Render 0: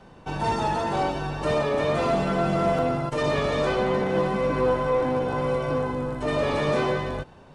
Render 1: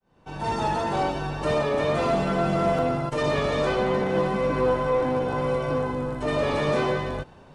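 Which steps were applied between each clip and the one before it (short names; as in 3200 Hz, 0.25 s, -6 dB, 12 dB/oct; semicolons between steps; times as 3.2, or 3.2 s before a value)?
opening faded in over 0.64 s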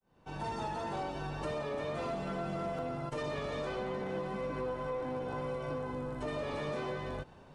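compressor 4:1, threshold -29 dBFS, peak gain reduction 9.5 dB; gain -6 dB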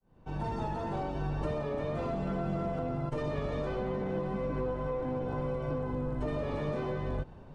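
tilt -2.5 dB/oct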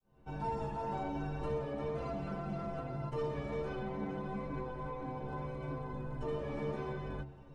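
metallic resonator 67 Hz, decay 0.34 s, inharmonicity 0.008; gain +4.5 dB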